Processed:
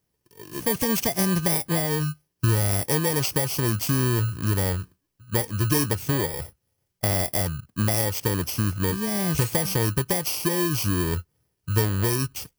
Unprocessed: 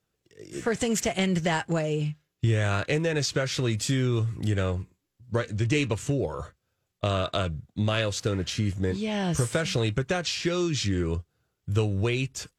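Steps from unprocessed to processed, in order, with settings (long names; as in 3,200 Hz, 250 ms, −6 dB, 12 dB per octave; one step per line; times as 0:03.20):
samples in bit-reversed order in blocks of 32 samples
level +2.5 dB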